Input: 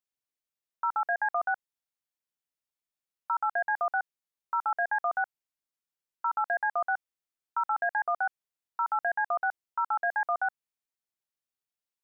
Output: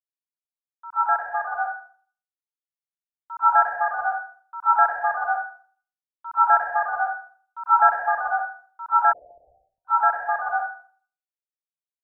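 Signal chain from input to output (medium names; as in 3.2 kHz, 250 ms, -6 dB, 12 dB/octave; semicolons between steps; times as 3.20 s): plate-style reverb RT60 0.66 s, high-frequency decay 0.9×, pre-delay 90 ms, DRR -6.5 dB; gain riding within 5 dB 2 s; 9.13–9.85 s: steep low-pass 610 Hz 72 dB/octave; three bands expanded up and down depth 100%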